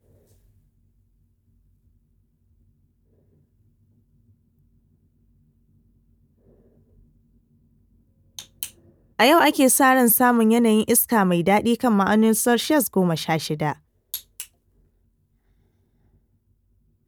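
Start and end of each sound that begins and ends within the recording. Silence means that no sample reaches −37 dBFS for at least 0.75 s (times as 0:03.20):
0:08.39–0:14.44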